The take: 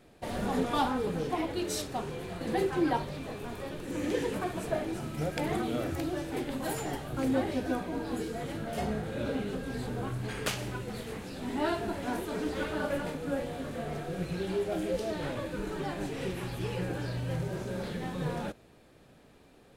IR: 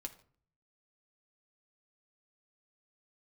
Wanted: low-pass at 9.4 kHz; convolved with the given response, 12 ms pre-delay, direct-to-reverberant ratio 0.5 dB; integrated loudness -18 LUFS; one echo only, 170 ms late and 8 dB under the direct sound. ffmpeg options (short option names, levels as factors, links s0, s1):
-filter_complex "[0:a]lowpass=9400,aecho=1:1:170:0.398,asplit=2[s0][s1];[1:a]atrim=start_sample=2205,adelay=12[s2];[s1][s2]afir=irnorm=-1:irlink=0,volume=1.41[s3];[s0][s3]amix=inputs=2:normalize=0,volume=3.76"